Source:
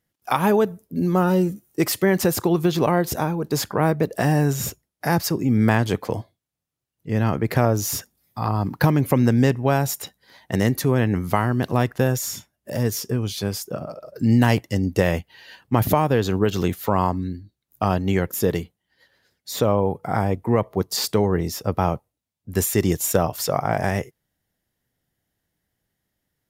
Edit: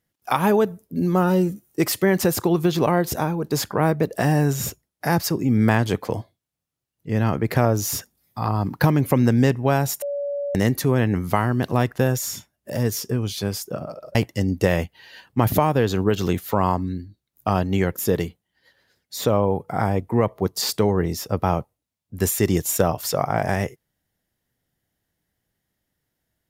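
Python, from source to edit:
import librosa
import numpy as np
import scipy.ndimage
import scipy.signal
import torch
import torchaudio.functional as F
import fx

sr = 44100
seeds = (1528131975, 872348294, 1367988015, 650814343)

y = fx.edit(x, sr, fx.bleep(start_s=10.02, length_s=0.53, hz=570.0, db=-23.5),
    fx.cut(start_s=14.15, length_s=0.35), tone=tone)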